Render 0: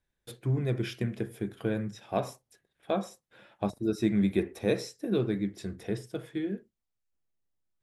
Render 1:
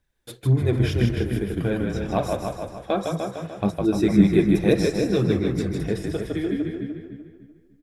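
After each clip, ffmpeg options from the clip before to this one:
-filter_complex "[0:a]asplit=2[s0][s1];[s1]asplit=4[s2][s3][s4][s5];[s2]adelay=156,afreqshift=-34,volume=0.631[s6];[s3]adelay=312,afreqshift=-68,volume=0.195[s7];[s4]adelay=468,afreqshift=-102,volume=0.061[s8];[s5]adelay=624,afreqshift=-136,volume=0.0188[s9];[s6][s7][s8][s9]amix=inputs=4:normalize=0[s10];[s0][s10]amix=inputs=2:normalize=0,aphaser=in_gain=1:out_gain=1:delay=4:decay=0.39:speed=1.9:type=triangular,asplit=2[s11][s12];[s12]adelay=298,lowpass=f=3400:p=1,volume=0.501,asplit=2[s13][s14];[s14]adelay=298,lowpass=f=3400:p=1,volume=0.35,asplit=2[s15][s16];[s16]adelay=298,lowpass=f=3400:p=1,volume=0.35,asplit=2[s17][s18];[s18]adelay=298,lowpass=f=3400:p=1,volume=0.35[s19];[s13][s15][s17][s19]amix=inputs=4:normalize=0[s20];[s11][s20]amix=inputs=2:normalize=0,volume=1.88"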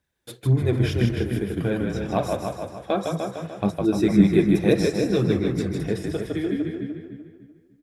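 -af "highpass=73"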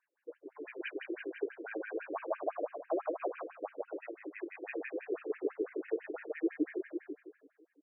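-af "areverse,acompressor=threshold=0.0398:ratio=4,areverse,afftfilt=real='re*between(b*sr/1024,370*pow(2200/370,0.5+0.5*sin(2*PI*6*pts/sr))/1.41,370*pow(2200/370,0.5+0.5*sin(2*PI*6*pts/sr))*1.41)':imag='im*between(b*sr/1024,370*pow(2200/370,0.5+0.5*sin(2*PI*6*pts/sr))/1.41,370*pow(2200/370,0.5+0.5*sin(2*PI*6*pts/sr))*1.41)':win_size=1024:overlap=0.75,volume=1.26"

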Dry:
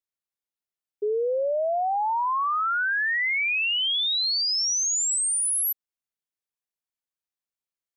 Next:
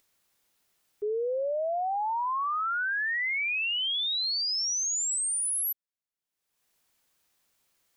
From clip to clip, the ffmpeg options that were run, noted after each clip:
-af "acompressor=mode=upward:threshold=0.00398:ratio=2.5,volume=0.596"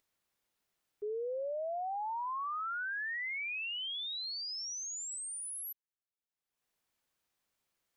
-af "highshelf=f=3800:g=-5.5,volume=0.422"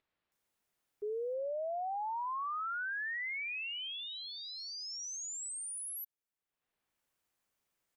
-filter_complex "[0:a]acrossover=split=4100[s0][s1];[s1]adelay=320[s2];[s0][s2]amix=inputs=2:normalize=0"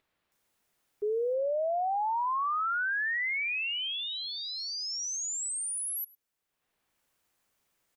-af "aecho=1:1:104:0.0668,volume=2.37"

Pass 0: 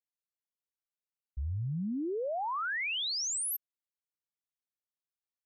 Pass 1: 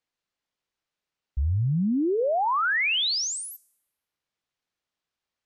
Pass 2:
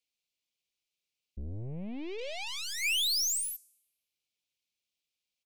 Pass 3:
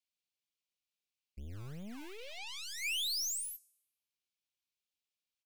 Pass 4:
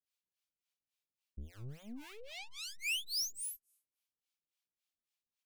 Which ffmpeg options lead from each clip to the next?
-filter_complex "[0:a]lowpass=4900,bandreject=f=430.3:t=h:w=4,bandreject=f=860.6:t=h:w=4,bandreject=f=1290.9:t=h:w=4,bandreject=f=1721.2:t=h:w=4,bandreject=f=2151.5:t=h:w=4,bandreject=f=2581.8:t=h:w=4,bandreject=f=3012.1:t=h:w=4,bandreject=f=3442.4:t=h:w=4,bandreject=f=3872.7:t=h:w=4,bandreject=f=4303:t=h:w=4,bandreject=f=4733.3:t=h:w=4,bandreject=f=5163.6:t=h:w=4,bandreject=f=5593.9:t=h:w=4,bandreject=f=6024.2:t=h:w=4,bandreject=f=6454.5:t=h:w=4,bandreject=f=6884.8:t=h:w=4,bandreject=f=7315.1:t=h:w=4,bandreject=f=7745.4:t=h:w=4,bandreject=f=8175.7:t=h:w=4,bandreject=f=8606:t=h:w=4,bandreject=f=9036.3:t=h:w=4,bandreject=f=9466.6:t=h:w=4,bandreject=f=9896.9:t=h:w=4,bandreject=f=10327.2:t=h:w=4,bandreject=f=10757.5:t=h:w=4,bandreject=f=11187.8:t=h:w=4,bandreject=f=11618.1:t=h:w=4,bandreject=f=12048.4:t=h:w=4,bandreject=f=12478.7:t=h:w=4,bandreject=f=12909:t=h:w=4,bandreject=f=13339.3:t=h:w=4,bandreject=f=13769.6:t=h:w=4,bandreject=f=14199.9:t=h:w=4,bandreject=f=14630.2:t=h:w=4,bandreject=f=15060.5:t=h:w=4,bandreject=f=15490.8:t=h:w=4,bandreject=f=15921.1:t=h:w=4,bandreject=f=16351.4:t=h:w=4,asplit=2[s0][s1];[s1]alimiter=level_in=5.62:limit=0.0631:level=0:latency=1:release=340,volume=0.178,volume=0.708[s2];[s0][s2]amix=inputs=2:normalize=0,volume=2.51"
-af "aeval=exprs='(tanh(50.1*val(0)+0.75)-tanh(0.75))/50.1':c=same,firequalizer=gain_entry='entry(540,0);entry(1400,-23);entry(2300,10)':delay=0.05:min_phase=1,volume=0.631"
-filter_complex "[0:a]acrossover=split=410|620|2100[s0][s1][s2][s3];[s0]acrusher=samples=25:mix=1:aa=0.000001:lfo=1:lforange=25:lforate=2.6[s4];[s1]aeval=exprs='(mod(398*val(0)+1,2)-1)/398':c=same[s5];[s3]asplit=2[s6][s7];[s7]adelay=24,volume=0.211[s8];[s6][s8]amix=inputs=2:normalize=0[s9];[s4][s5][s2][s9]amix=inputs=4:normalize=0,volume=0.473"
-filter_complex "[0:a]acrossover=split=580[s0][s1];[s0]aeval=exprs='val(0)*(1-1/2+1/2*cos(2*PI*3.6*n/s))':c=same[s2];[s1]aeval=exprs='val(0)*(1-1/2-1/2*cos(2*PI*3.6*n/s))':c=same[s3];[s2][s3]amix=inputs=2:normalize=0,volume=1.26"

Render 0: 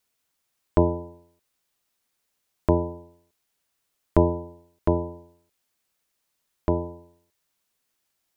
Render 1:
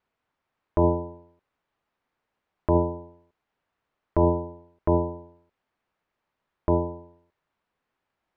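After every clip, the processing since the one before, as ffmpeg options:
-af "alimiter=limit=0.188:level=0:latency=1:release=13,lowpass=1900,equalizer=f=920:w=1.5:g=2.5,volume=1.5"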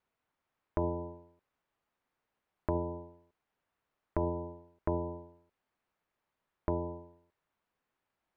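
-af "acompressor=threshold=0.0631:ratio=6,volume=0.596"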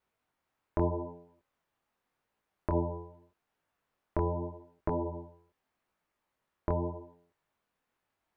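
-af "flanger=delay=18.5:depth=6.9:speed=0.83,volume=1.78"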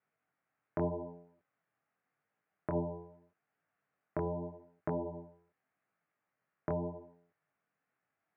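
-af "highpass=f=120:w=0.5412,highpass=f=120:w=1.3066,equalizer=f=230:t=q:w=4:g=-6,equalizer=f=360:t=q:w=4:g=-8,equalizer=f=530:t=q:w=4:g=-5,equalizer=f=960:t=q:w=4:g=-10,lowpass=f=2200:w=0.5412,lowpass=f=2200:w=1.3066,volume=1.19"

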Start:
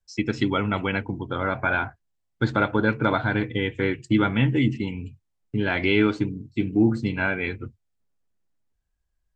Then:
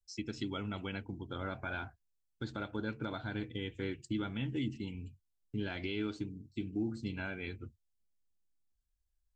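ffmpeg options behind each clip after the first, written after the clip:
-af "equalizer=f=125:t=o:w=1:g=-8,equalizer=f=250:t=o:w=1:g=-4,equalizer=f=500:t=o:w=1:g=-7,equalizer=f=1000:t=o:w=1:g=-9,equalizer=f=2000:t=o:w=1:g=-10,alimiter=limit=0.0794:level=0:latency=1:release=319,volume=0.596"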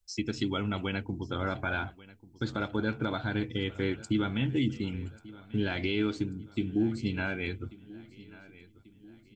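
-af "aecho=1:1:1139|2278|3417|4556:0.1|0.049|0.024|0.0118,volume=2.37"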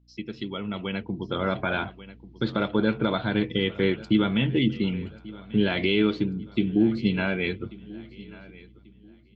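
-af "highpass=170,equalizer=f=190:t=q:w=4:g=4,equalizer=f=280:t=q:w=4:g=-8,equalizer=f=800:t=q:w=4:g=-6,equalizer=f=1500:t=q:w=4:g=-7,equalizer=f=2400:t=q:w=4:g=-3,lowpass=f=3800:w=0.5412,lowpass=f=3800:w=1.3066,aeval=exprs='val(0)+0.001*(sin(2*PI*60*n/s)+sin(2*PI*2*60*n/s)/2+sin(2*PI*3*60*n/s)/3+sin(2*PI*4*60*n/s)/4+sin(2*PI*5*60*n/s)/5)':c=same,dynaudnorm=f=310:g=7:m=3.16"

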